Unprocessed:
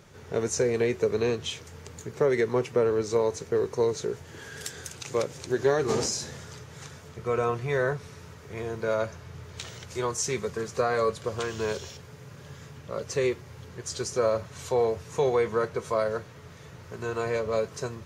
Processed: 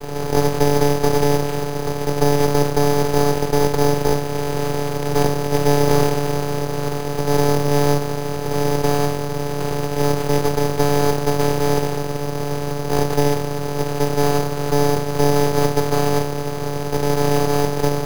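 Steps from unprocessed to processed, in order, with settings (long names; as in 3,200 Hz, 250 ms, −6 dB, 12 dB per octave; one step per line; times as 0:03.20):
compressor on every frequency bin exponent 0.2
downward expander −15 dBFS
channel vocoder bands 8, square 144 Hz
bad sample-rate conversion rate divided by 8×, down none, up hold
half-wave rectification
level +7 dB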